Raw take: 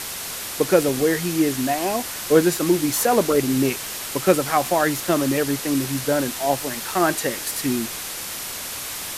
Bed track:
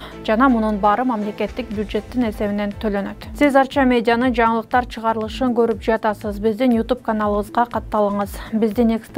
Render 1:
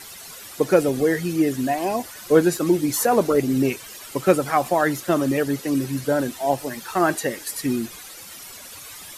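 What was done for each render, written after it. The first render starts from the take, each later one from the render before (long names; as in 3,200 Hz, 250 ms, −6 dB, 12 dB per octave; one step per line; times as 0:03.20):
broadband denoise 13 dB, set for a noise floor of −31 dBFS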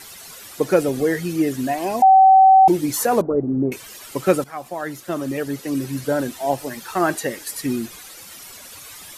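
0:02.02–0:02.68: beep over 765 Hz −7 dBFS
0:03.21–0:03.72: Bessel low-pass filter 710 Hz, order 6
0:04.44–0:06.04: fade in, from −14.5 dB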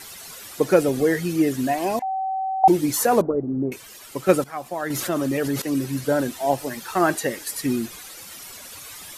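0:01.99–0:02.64: resonant band-pass 1,900 Hz, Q 2.8
0:03.31–0:04.29: clip gain −4 dB
0:04.90–0:05.62: envelope flattener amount 70%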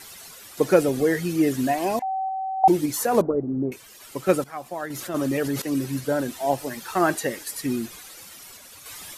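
sample-and-hold tremolo 3.5 Hz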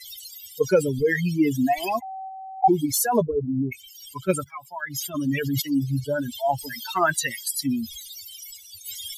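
spectral dynamics exaggerated over time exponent 3
envelope flattener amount 50%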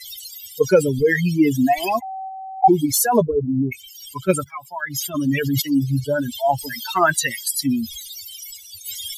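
level +4.5 dB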